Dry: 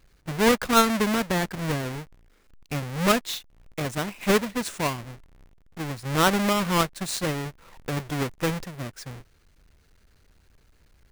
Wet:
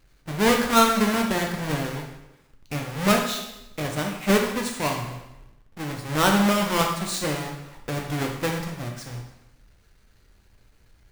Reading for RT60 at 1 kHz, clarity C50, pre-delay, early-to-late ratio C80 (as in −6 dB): 0.90 s, 5.0 dB, 4 ms, 7.5 dB